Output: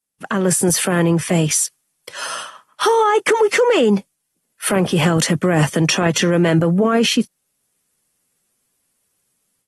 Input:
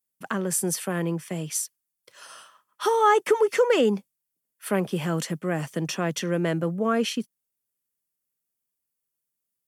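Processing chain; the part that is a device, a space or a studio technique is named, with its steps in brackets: low-bitrate web radio (level rider gain up to 13.5 dB; peak limiter -12.5 dBFS, peak gain reduction 11.5 dB; trim +5 dB; AAC 32 kbps 48 kHz)

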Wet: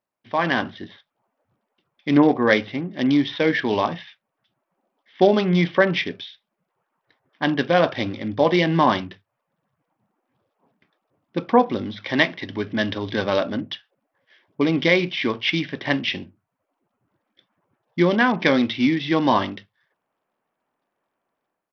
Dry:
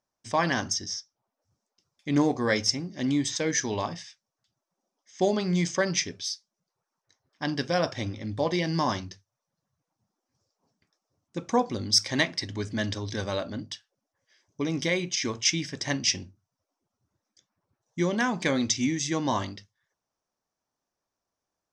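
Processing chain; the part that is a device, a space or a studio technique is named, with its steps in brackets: Bluetooth headset (high-pass 170 Hz 12 dB/octave; level rider gain up to 10.5 dB; resampled via 8 kHz; SBC 64 kbps 44.1 kHz)

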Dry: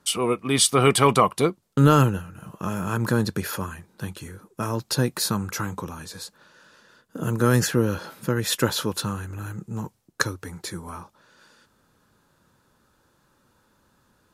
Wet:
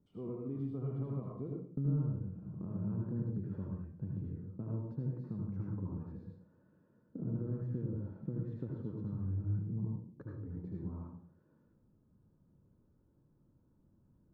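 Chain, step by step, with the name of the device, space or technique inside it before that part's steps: television next door (compression 4:1, threshold -31 dBFS, peak gain reduction 16.5 dB; low-pass 280 Hz 12 dB/octave; reverberation RT60 0.50 s, pre-delay 71 ms, DRR -3 dB); trim -4.5 dB

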